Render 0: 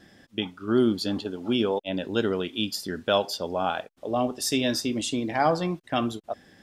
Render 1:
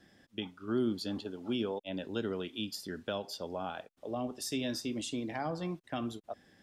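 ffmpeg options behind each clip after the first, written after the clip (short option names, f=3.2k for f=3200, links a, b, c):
-filter_complex "[0:a]acrossover=split=350[a][b];[b]acompressor=threshold=-27dB:ratio=4[c];[a][c]amix=inputs=2:normalize=0,volume=-8.5dB"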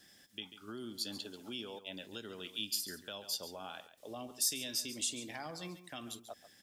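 -af "aecho=1:1:139:0.2,alimiter=level_in=6dB:limit=-24dB:level=0:latency=1:release=438,volume=-6dB,crystalizer=i=8.5:c=0,volume=-7.5dB"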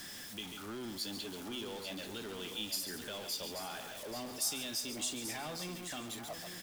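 -filter_complex "[0:a]aeval=exprs='val(0)+0.5*0.0119*sgn(val(0))':c=same,asplit=2[a][b];[b]aecho=0:1:834:0.335[c];[a][c]amix=inputs=2:normalize=0,volume=-3.5dB"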